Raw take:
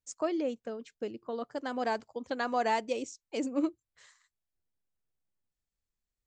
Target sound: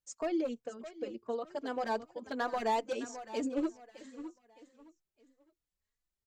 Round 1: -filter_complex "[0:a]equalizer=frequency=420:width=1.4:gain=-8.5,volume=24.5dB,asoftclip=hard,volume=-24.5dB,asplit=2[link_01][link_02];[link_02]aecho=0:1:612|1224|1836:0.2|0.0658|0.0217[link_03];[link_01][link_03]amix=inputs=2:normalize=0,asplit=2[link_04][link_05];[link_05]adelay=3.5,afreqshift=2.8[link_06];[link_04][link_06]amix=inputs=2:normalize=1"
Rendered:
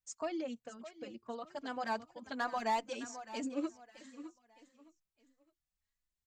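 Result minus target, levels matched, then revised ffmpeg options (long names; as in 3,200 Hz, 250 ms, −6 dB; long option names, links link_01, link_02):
500 Hz band −2.5 dB
-filter_complex "[0:a]equalizer=frequency=420:width=1.4:gain=2,volume=24.5dB,asoftclip=hard,volume=-24.5dB,asplit=2[link_01][link_02];[link_02]aecho=0:1:612|1224|1836:0.2|0.0658|0.0217[link_03];[link_01][link_03]amix=inputs=2:normalize=0,asplit=2[link_04][link_05];[link_05]adelay=3.5,afreqshift=2.8[link_06];[link_04][link_06]amix=inputs=2:normalize=1"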